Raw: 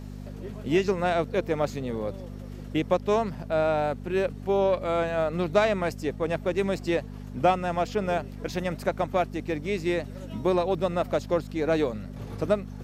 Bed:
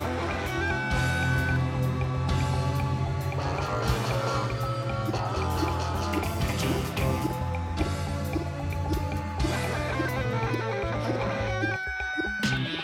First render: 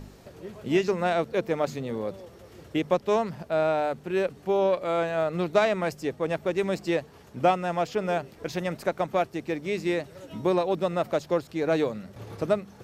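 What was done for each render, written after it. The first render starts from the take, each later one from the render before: de-hum 50 Hz, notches 5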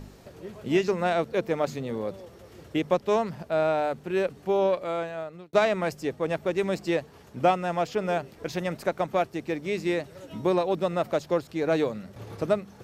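4.65–5.53 s: fade out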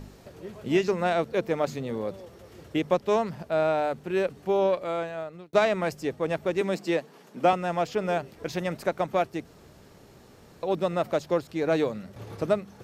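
6.61–7.53 s: steep high-pass 160 Hz; 9.45–10.63 s: room tone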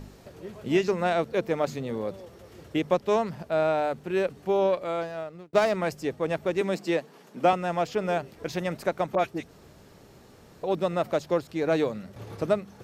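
5.01–5.76 s: median filter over 15 samples; 9.15–10.64 s: phase dispersion highs, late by 41 ms, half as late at 1.7 kHz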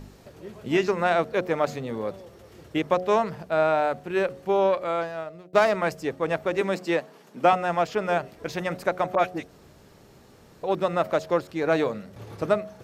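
de-hum 91.12 Hz, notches 8; dynamic bell 1.3 kHz, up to +6 dB, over -39 dBFS, Q 0.73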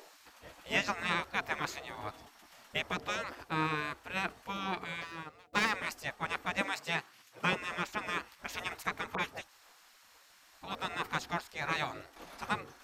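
spectral gate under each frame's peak -15 dB weak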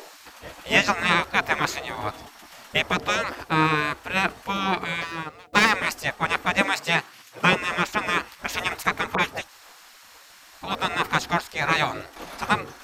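trim +12 dB

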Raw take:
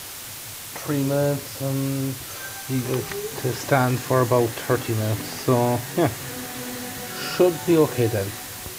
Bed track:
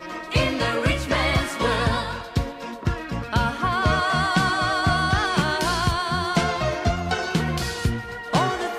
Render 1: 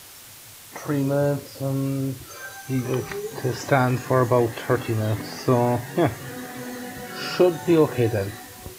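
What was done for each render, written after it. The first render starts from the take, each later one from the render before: noise print and reduce 8 dB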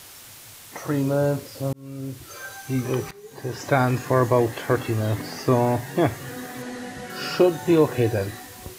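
1.73–2.36 s: fade in; 3.11–3.83 s: fade in, from -19.5 dB; 6.62–7.10 s: one-bit delta coder 64 kbps, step -47.5 dBFS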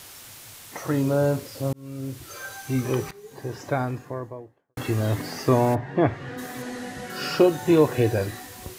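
2.90–4.77 s: studio fade out; 5.74–6.37 s: low-pass 1.6 kHz -> 3.5 kHz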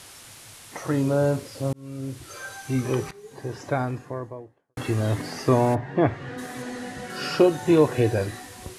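Chebyshev low-pass 11 kHz, order 3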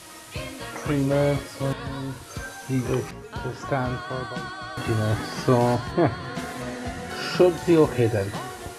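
add bed track -13 dB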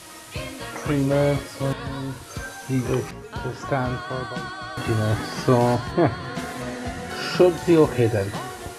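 trim +1.5 dB

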